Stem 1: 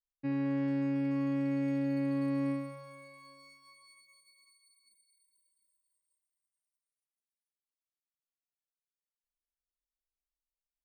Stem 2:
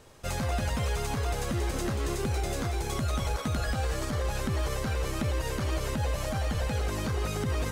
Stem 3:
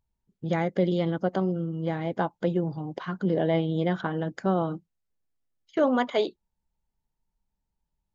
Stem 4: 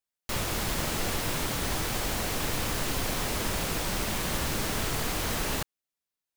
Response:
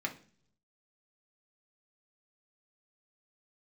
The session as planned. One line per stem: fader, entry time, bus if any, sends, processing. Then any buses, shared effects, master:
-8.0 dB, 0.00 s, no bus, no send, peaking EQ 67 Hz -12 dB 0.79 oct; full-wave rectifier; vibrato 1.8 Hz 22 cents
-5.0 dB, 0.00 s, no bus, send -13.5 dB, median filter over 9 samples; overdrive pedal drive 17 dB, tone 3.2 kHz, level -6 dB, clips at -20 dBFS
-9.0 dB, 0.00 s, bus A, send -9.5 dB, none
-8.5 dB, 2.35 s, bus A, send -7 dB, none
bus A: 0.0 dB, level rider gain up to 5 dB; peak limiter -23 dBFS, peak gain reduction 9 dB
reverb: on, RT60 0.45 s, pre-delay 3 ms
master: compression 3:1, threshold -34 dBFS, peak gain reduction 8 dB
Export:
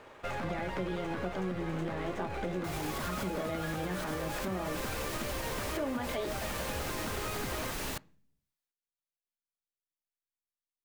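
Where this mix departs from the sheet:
stem 3 -9.0 dB -> -2.5 dB; stem 4: send -7 dB -> -13.5 dB

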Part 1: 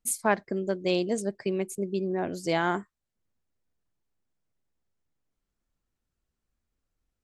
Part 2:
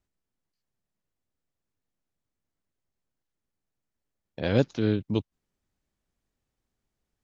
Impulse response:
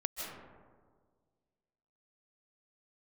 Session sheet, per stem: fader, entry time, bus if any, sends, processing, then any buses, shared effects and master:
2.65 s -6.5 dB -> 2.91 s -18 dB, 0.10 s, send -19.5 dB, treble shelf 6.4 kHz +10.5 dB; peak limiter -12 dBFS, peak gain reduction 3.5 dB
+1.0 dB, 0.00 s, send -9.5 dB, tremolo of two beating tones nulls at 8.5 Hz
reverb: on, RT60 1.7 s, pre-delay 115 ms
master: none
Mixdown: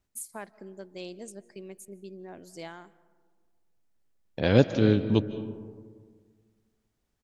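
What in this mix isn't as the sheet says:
stem 1 -6.5 dB -> -15.5 dB; stem 2: missing tremolo of two beating tones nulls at 8.5 Hz

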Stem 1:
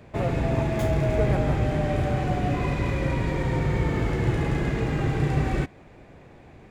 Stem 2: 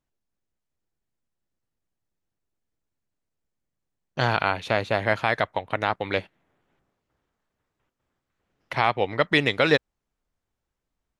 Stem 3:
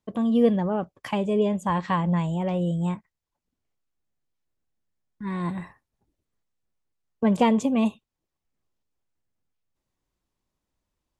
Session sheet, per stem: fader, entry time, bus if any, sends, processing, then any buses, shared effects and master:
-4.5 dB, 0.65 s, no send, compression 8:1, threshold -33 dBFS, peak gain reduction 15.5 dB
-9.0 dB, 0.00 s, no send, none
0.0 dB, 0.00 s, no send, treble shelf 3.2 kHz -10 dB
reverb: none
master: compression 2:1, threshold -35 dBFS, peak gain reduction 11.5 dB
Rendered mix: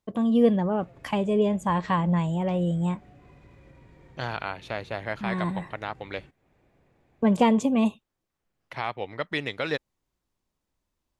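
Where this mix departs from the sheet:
stem 1 -4.5 dB -> -16.5 dB; stem 3: missing treble shelf 3.2 kHz -10 dB; master: missing compression 2:1, threshold -35 dBFS, peak gain reduction 11.5 dB

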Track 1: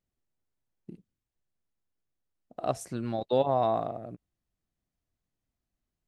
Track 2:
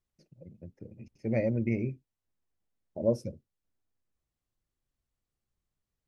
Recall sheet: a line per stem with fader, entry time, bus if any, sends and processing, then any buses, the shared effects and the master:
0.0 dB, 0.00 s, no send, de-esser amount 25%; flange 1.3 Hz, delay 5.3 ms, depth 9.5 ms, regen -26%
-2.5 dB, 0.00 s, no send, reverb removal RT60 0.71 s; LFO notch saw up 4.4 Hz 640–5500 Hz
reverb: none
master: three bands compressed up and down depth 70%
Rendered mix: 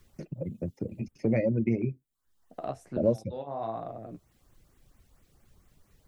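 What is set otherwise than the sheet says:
stem 1 0.0 dB -> -11.0 dB; stem 2 -2.5 dB -> +6.0 dB

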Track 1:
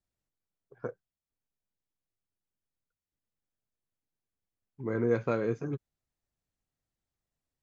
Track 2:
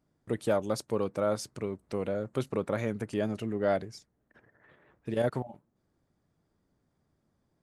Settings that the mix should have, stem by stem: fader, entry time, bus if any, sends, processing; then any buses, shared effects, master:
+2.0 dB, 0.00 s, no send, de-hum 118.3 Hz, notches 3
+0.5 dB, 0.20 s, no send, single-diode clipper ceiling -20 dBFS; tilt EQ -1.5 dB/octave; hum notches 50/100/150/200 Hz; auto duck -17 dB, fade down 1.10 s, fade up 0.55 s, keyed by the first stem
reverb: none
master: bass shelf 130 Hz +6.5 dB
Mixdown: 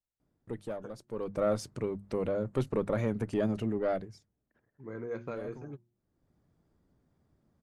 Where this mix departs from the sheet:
stem 1 +2.0 dB -> -9.5 dB; master: missing bass shelf 130 Hz +6.5 dB

